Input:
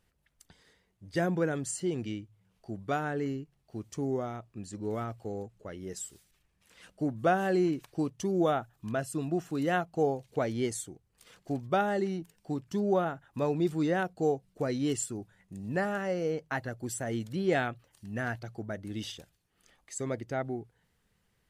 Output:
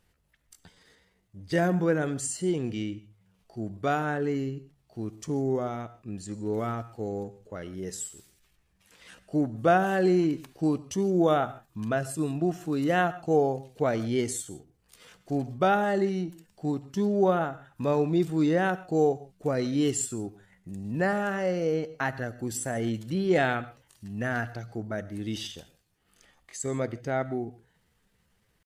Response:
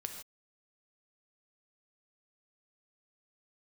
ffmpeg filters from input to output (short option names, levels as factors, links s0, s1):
-filter_complex "[0:a]asplit=2[s0][s1];[1:a]atrim=start_sample=2205,atrim=end_sample=3969,asetrate=31752,aresample=44100[s2];[s1][s2]afir=irnorm=-1:irlink=0,volume=0.631[s3];[s0][s3]amix=inputs=2:normalize=0,atempo=0.75"